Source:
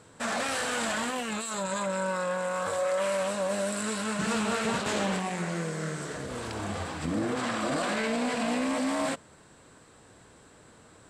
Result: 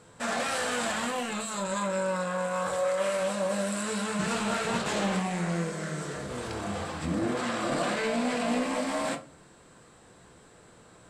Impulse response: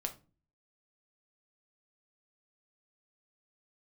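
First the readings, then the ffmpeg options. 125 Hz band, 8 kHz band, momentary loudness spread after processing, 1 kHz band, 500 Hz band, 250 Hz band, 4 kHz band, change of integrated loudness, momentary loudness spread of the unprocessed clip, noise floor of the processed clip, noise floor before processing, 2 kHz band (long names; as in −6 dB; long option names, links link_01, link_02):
+1.5 dB, −0.5 dB, 6 LU, +0.5 dB, +0.5 dB, 0.0 dB, 0.0 dB, 0.0 dB, 6 LU, −55 dBFS, −55 dBFS, −0.5 dB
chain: -filter_complex "[1:a]atrim=start_sample=2205[link_01];[0:a][link_01]afir=irnorm=-1:irlink=0"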